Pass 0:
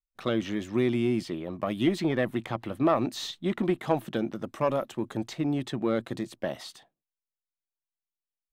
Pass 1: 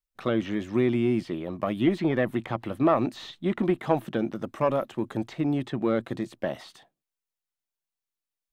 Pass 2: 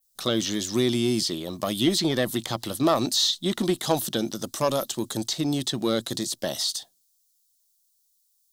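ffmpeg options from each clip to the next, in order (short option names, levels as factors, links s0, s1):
-filter_complex "[0:a]acrossover=split=3000[s0][s1];[s1]acompressor=threshold=0.00224:ratio=4:attack=1:release=60[s2];[s0][s2]amix=inputs=2:normalize=0,volume=1.26"
-af "adynamicequalizer=threshold=0.00355:dfrequency=4900:dqfactor=0.88:tfrequency=4900:tqfactor=0.88:attack=5:release=100:ratio=0.375:range=2.5:mode=boostabove:tftype=bell,aexciter=amount=12.3:drive=4.5:freq=3600"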